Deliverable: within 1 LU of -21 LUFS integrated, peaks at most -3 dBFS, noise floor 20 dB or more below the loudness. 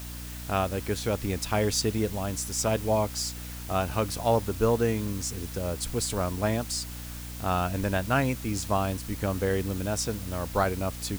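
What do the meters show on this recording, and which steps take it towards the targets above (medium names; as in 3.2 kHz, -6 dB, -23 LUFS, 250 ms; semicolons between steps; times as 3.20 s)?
hum 60 Hz; highest harmonic 300 Hz; hum level -37 dBFS; noise floor -39 dBFS; noise floor target -49 dBFS; loudness -28.5 LUFS; peak level -11.0 dBFS; loudness target -21.0 LUFS
-> hum notches 60/120/180/240/300 Hz; noise print and reduce 10 dB; trim +7.5 dB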